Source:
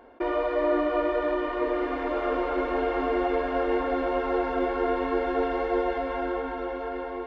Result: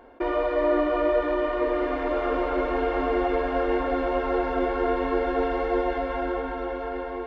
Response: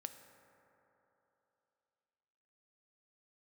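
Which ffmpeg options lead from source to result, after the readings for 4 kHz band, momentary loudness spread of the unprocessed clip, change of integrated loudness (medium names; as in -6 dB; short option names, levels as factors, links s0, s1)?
+1.0 dB, 5 LU, +1.5 dB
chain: -filter_complex "[0:a]asplit=2[s0][s1];[1:a]atrim=start_sample=2205,lowshelf=f=79:g=12[s2];[s1][s2]afir=irnorm=-1:irlink=0,volume=1.06[s3];[s0][s3]amix=inputs=2:normalize=0,volume=0.708"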